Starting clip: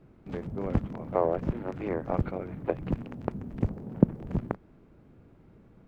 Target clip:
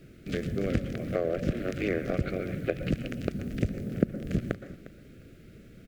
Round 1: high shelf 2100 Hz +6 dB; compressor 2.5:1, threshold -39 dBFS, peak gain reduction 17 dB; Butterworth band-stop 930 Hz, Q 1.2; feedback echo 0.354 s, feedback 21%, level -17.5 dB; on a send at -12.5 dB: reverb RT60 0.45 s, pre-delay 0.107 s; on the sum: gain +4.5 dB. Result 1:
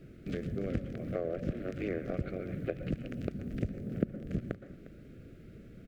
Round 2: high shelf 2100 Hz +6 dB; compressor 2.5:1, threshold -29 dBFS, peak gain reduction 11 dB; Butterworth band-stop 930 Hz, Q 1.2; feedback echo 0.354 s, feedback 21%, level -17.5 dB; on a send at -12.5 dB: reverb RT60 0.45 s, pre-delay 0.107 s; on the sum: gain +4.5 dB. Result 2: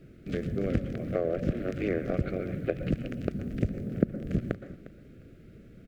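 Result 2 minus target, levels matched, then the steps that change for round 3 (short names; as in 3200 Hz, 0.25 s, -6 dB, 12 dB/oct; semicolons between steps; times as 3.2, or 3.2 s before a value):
4000 Hz band -6.0 dB
change: high shelf 2100 Hz +15 dB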